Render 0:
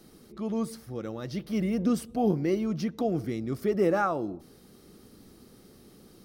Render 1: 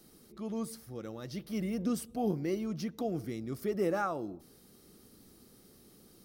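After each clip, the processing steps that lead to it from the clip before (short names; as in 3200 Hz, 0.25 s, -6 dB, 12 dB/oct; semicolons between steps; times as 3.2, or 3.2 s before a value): high shelf 5800 Hz +8.5 dB; gain -6.5 dB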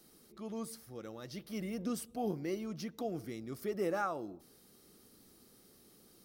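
low shelf 310 Hz -6 dB; gain -1.5 dB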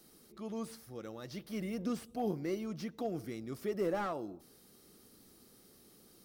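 slew limiter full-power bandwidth 19 Hz; gain +1 dB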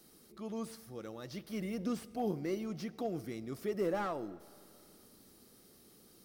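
reverb RT60 2.8 s, pre-delay 25 ms, DRR 19.5 dB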